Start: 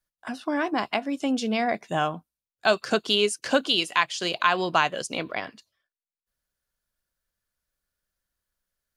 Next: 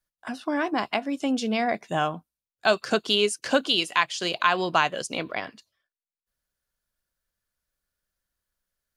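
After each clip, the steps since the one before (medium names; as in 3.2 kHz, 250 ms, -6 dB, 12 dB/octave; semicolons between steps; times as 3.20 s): no audible change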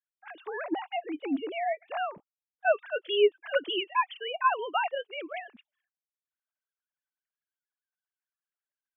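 formants replaced by sine waves; trim -4.5 dB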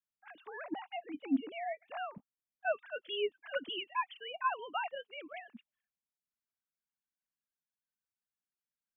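resonant low shelf 290 Hz +7 dB, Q 3; trim -7.5 dB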